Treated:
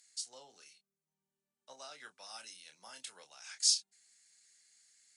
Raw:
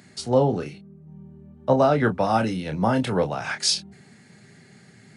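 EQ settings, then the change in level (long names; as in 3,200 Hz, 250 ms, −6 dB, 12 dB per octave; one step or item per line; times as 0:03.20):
resonant band-pass 7,200 Hz, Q 1.4
spectral tilt +2.5 dB per octave
−9.0 dB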